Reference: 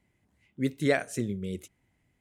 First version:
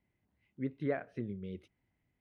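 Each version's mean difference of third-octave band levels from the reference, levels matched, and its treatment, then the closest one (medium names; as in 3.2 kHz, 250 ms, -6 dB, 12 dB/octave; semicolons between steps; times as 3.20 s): 5.0 dB: de-esser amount 90%; low-pass that closes with the level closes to 1.8 kHz, closed at -25 dBFS; boxcar filter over 6 samples; trim -8 dB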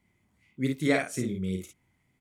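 3.5 dB: bass shelf 120 Hz -5.5 dB; comb 0.9 ms, depth 30%; on a send: early reflections 32 ms -9.5 dB, 54 ms -4.5 dB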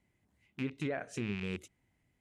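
8.0 dB: rattle on loud lows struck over -38 dBFS, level -26 dBFS; low-pass that closes with the level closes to 1.7 kHz, closed at -21 dBFS; peak limiter -22.5 dBFS, peak gain reduction 10 dB; trim -4 dB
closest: second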